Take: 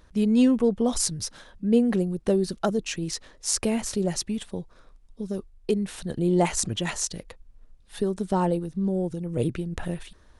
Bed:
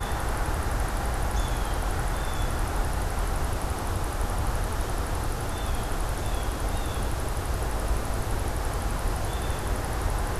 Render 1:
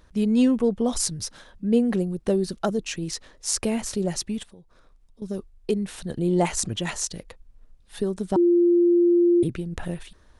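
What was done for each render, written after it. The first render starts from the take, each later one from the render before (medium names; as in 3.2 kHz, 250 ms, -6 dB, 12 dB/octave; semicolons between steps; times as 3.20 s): 4.43–5.22 s: compression 2.5:1, threshold -52 dBFS; 8.36–9.43 s: bleep 347 Hz -14.5 dBFS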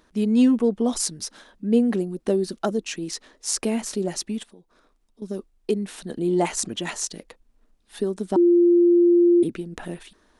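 resonant low shelf 170 Hz -11 dB, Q 1.5; band-stop 530 Hz, Q 12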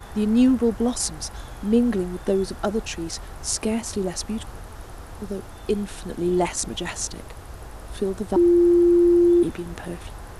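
add bed -10.5 dB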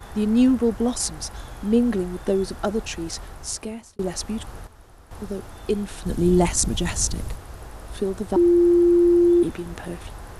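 3.22–3.99 s: fade out; 4.67–5.11 s: gain -10 dB; 6.06–7.36 s: tone controls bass +11 dB, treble +6 dB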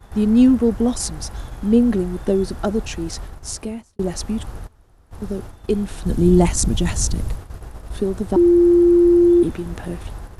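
gate -37 dBFS, range -10 dB; bass shelf 340 Hz +7 dB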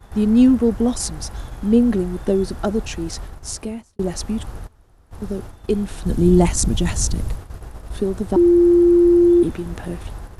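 no audible change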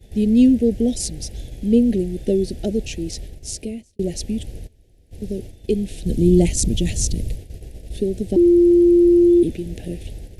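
Chebyshev band-stop 510–2500 Hz, order 2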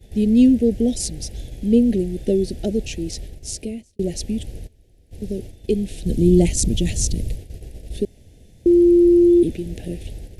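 8.05–8.66 s: room tone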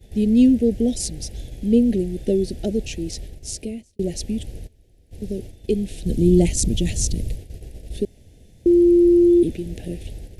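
trim -1 dB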